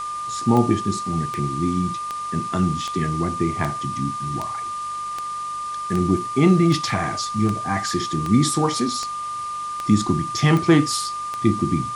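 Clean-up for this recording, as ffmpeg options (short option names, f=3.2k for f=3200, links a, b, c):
-af "adeclick=t=4,bandreject=f=48.3:t=h:w=4,bandreject=f=96.6:t=h:w=4,bandreject=f=144.9:t=h:w=4,bandreject=f=193.2:t=h:w=4,bandreject=f=1.2k:w=30,afwtdn=0.0089"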